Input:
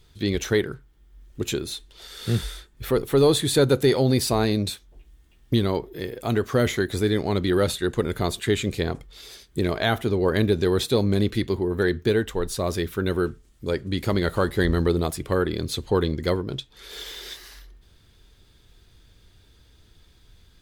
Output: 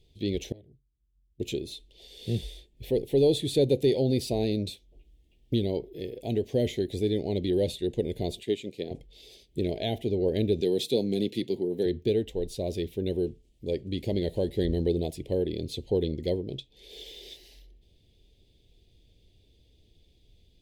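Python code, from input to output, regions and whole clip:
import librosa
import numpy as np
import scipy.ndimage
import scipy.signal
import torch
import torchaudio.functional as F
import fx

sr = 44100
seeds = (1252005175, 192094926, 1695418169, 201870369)

y = fx.chain(x, sr, fx.highpass(hz=55.0, slope=24),
    fx.tone_stack(knobs='10-0-1'),
    fx.transformer_sat(knee_hz=540.0), at=(0.52, 1.4))
y = fx.chain(y, sr, fx.highpass(hz=190.0, slope=12),
    fx.upward_expand(threshold_db=-34.0, expansion=1.5), at=(8.43, 8.91))
y = fx.chain(y, sr, fx.highpass(hz=140.0, slope=24),
    fx.high_shelf(hz=3700.0, db=6.0),
    fx.notch(hz=590.0, q=17.0), at=(10.61, 11.86))
y = scipy.signal.sosfilt(scipy.signal.cheby1(2, 1.0, [570.0, 2900.0], 'bandstop', fs=sr, output='sos'), y)
y = fx.bass_treble(y, sr, bass_db=-2, treble_db=-9)
y = y * librosa.db_to_amplitude(-3.5)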